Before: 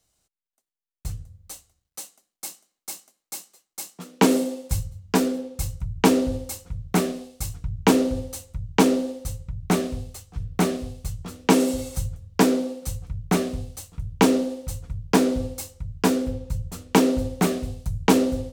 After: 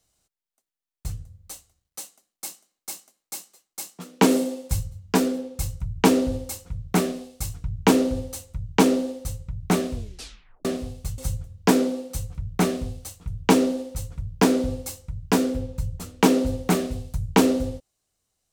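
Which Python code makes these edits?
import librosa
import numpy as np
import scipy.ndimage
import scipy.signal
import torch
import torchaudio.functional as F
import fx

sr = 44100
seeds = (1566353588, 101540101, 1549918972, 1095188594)

y = fx.edit(x, sr, fx.tape_stop(start_s=9.94, length_s=0.71),
    fx.cut(start_s=11.18, length_s=0.72), tone=tone)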